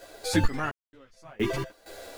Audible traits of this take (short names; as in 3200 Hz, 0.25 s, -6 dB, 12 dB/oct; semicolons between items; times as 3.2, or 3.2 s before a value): a quantiser's noise floor 10-bit, dither none; random-step tremolo 4.3 Hz, depth 100%; a shimmering, thickened sound